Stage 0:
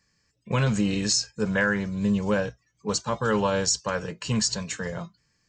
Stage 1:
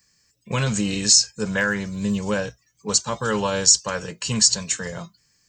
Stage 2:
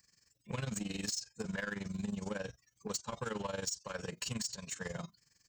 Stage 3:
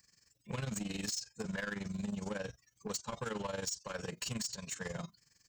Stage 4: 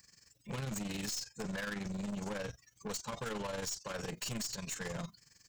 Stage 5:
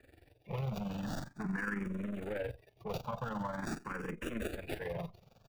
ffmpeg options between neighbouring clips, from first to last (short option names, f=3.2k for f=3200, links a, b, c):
-af "aemphasis=mode=production:type=75kf"
-af "acompressor=threshold=-27dB:ratio=6,asoftclip=type=tanh:threshold=-25.5dB,tremolo=f=22:d=0.824,volume=-3dB"
-af "asoftclip=type=tanh:threshold=-32dB,volume=1.5dB"
-af "aeval=exprs='(tanh(126*val(0)+0.25)-tanh(0.25))/126':c=same,volume=6dB"
-filter_complex "[0:a]acrossover=split=390|840|2600[a][b][c][d];[b]aecho=1:1:107:0.0708[e];[d]acrusher=samples=42:mix=1:aa=0.000001[f];[a][e][c][f]amix=inputs=4:normalize=0,asplit=2[g][h];[h]afreqshift=0.44[i];[g][i]amix=inputs=2:normalize=1,volume=4.5dB"